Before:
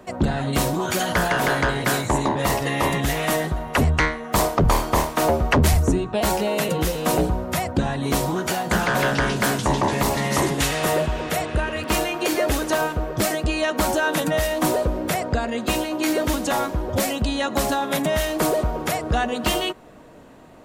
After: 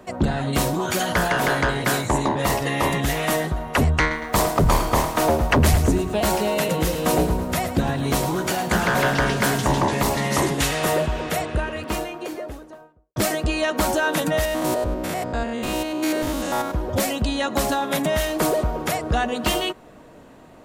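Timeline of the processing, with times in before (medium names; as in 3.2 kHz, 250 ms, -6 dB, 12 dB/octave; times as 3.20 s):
4.00–9.84 s: bit-crushed delay 109 ms, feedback 55%, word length 8-bit, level -10.5 dB
11.19–13.16 s: studio fade out
14.45–16.74 s: spectrogram pixelated in time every 100 ms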